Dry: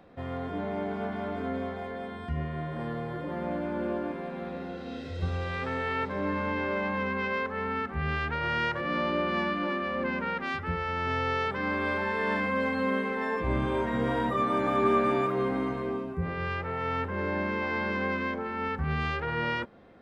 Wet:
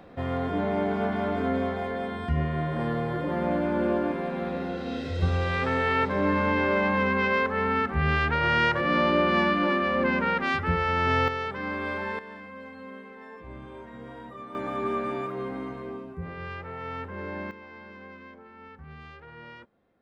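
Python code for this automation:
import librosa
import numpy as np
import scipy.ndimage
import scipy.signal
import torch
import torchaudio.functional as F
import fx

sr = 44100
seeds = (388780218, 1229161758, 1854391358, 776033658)

y = fx.gain(x, sr, db=fx.steps((0.0, 6.0), (11.28, -2.0), (12.19, -14.5), (14.55, -5.0), (17.51, -15.5)))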